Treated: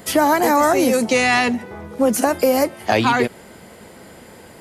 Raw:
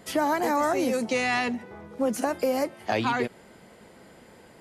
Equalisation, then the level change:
parametric band 84 Hz +7 dB 0.2 octaves
high-shelf EQ 10,000 Hz +10 dB
+9.0 dB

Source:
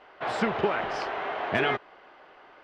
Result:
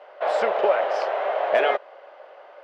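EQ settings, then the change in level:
high-pass with resonance 560 Hz, resonance Q 5.9
0.0 dB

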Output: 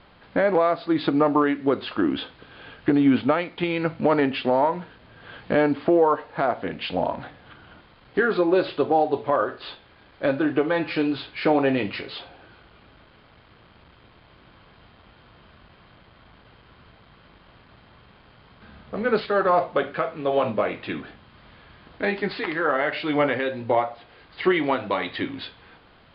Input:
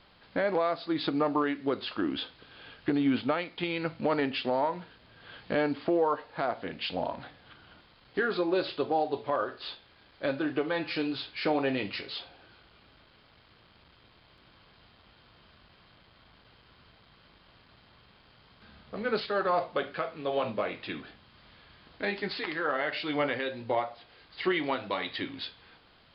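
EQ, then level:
low-pass filter 3,200 Hz 6 dB per octave
high-frequency loss of the air 140 metres
+8.5 dB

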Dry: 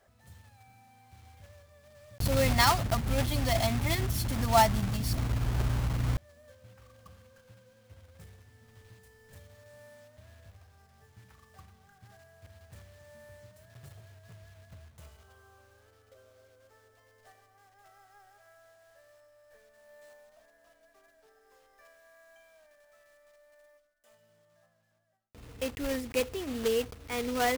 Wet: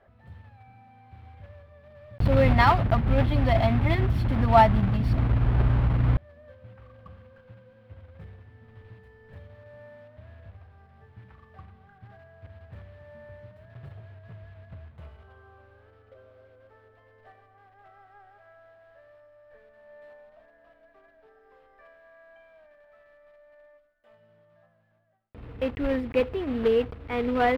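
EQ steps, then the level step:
high-frequency loss of the air 470 metres
+7.5 dB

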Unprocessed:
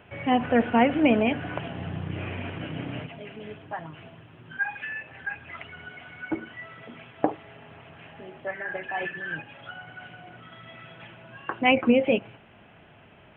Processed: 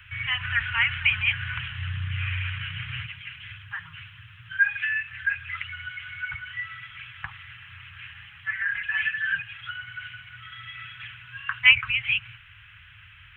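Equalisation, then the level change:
inverse Chebyshev band-stop filter 240–630 Hz, stop band 60 dB
+8.5 dB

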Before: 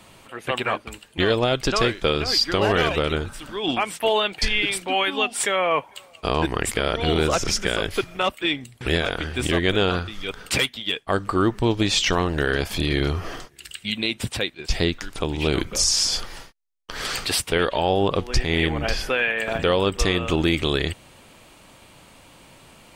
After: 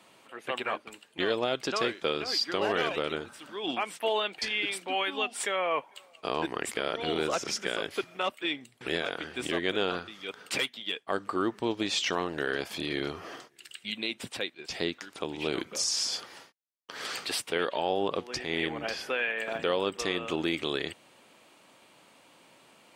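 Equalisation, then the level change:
high-pass filter 240 Hz 12 dB per octave
high-shelf EQ 8,000 Hz −5 dB
−7.5 dB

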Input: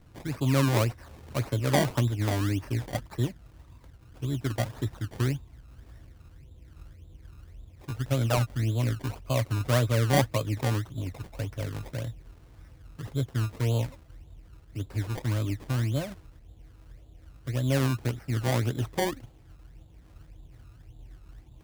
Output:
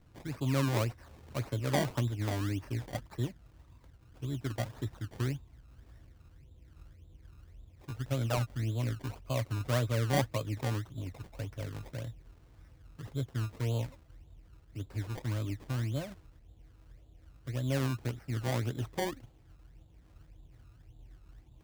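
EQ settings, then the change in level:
parametric band 11,000 Hz −2.5 dB 0.52 octaves
−6.0 dB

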